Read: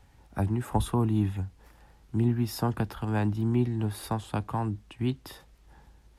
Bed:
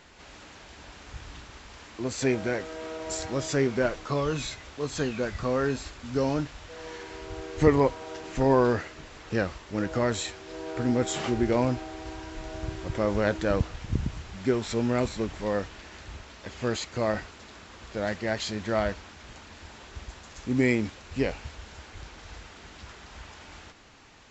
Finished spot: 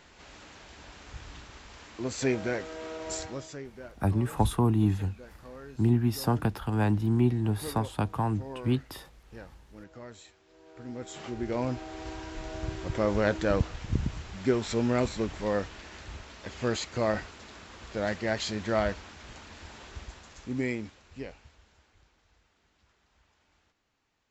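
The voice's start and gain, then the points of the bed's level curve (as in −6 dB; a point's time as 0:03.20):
3.65 s, +1.5 dB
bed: 0:03.18 −2 dB
0:03.68 −19.5 dB
0:10.56 −19.5 dB
0:12.02 −0.5 dB
0:19.89 −0.5 dB
0:22.29 −23 dB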